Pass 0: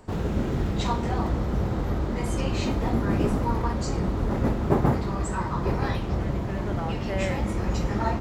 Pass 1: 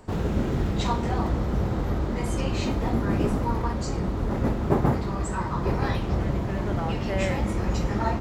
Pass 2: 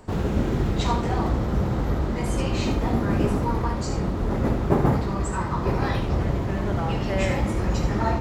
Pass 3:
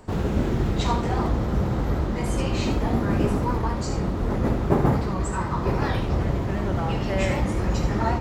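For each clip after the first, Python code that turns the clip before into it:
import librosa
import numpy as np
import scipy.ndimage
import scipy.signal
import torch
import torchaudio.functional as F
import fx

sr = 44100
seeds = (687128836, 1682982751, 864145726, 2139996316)

y1 = fx.rider(x, sr, range_db=10, speed_s=2.0)
y2 = y1 + 10.0 ** (-8.5 / 20.0) * np.pad(y1, (int(76 * sr / 1000.0), 0))[:len(y1)]
y2 = y2 * 10.0 ** (1.5 / 20.0)
y3 = fx.record_warp(y2, sr, rpm=78.0, depth_cents=100.0)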